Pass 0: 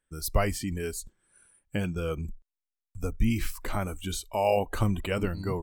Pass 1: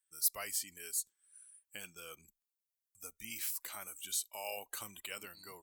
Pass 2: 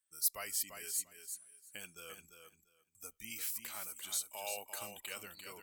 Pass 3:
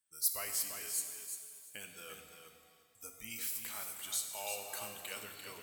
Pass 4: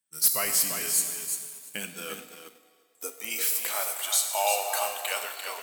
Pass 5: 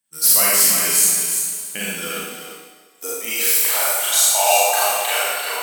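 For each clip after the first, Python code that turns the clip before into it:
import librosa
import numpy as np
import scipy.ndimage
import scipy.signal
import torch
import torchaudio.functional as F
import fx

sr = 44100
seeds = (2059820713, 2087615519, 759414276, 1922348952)

y1 = np.diff(x, prepend=0.0)
y1 = y1 * 10.0 ** (1.0 / 20.0)
y2 = fx.echo_feedback(y1, sr, ms=345, feedback_pct=17, wet_db=-7.5)
y2 = y2 * 10.0 ** (-1.0 / 20.0)
y3 = fx.rev_shimmer(y2, sr, seeds[0], rt60_s=1.8, semitones=7, shimmer_db=-8, drr_db=5.5)
y4 = fx.leveller(y3, sr, passes=2)
y4 = fx.filter_sweep_highpass(y4, sr, from_hz=160.0, to_hz=700.0, start_s=1.56, end_s=4.23, q=2.4)
y4 = y4 * 10.0 ** (5.0 / 20.0)
y5 = fx.rev_schroeder(y4, sr, rt60_s=0.99, comb_ms=32, drr_db=-5.5)
y5 = y5 * 10.0 ** (4.5 / 20.0)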